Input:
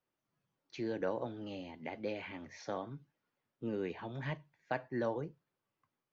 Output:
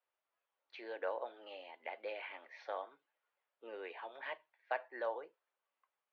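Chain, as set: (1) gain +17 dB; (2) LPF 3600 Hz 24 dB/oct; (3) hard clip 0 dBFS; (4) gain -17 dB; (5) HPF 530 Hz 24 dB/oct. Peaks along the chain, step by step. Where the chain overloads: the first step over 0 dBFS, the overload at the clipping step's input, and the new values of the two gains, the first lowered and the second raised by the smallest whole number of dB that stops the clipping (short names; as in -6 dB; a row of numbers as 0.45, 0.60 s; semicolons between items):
-5.0, -5.0, -5.0, -22.0, -24.0 dBFS; no overload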